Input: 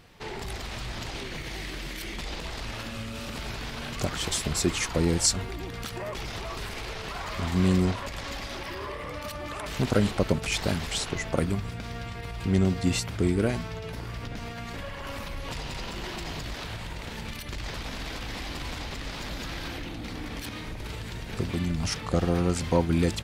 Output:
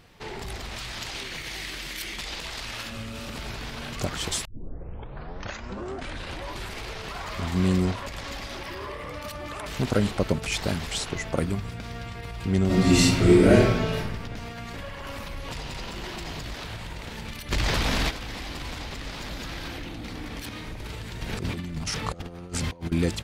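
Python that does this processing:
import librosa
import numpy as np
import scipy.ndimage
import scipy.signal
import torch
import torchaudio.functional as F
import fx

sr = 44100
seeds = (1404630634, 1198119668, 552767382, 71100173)

y = fx.tilt_shelf(x, sr, db=-5.0, hz=970.0, at=(0.76, 2.9))
y = fx.reverb_throw(y, sr, start_s=12.66, length_s=1.3, rt60_s=1.0, drr_db=-9.5)
y = fx.env_flatten(y, sr, amount_pct=50, at=(17.5, 18.09), fade=0.02)
y = fx.over_compress(y, sr, threshold_db=-31.0, ratio=-0.5, at=(21.21, 22.92))
y = fx.edit(y, sr, fx.tape_start(start_s=4.45, length_s=2.36), tone=tone)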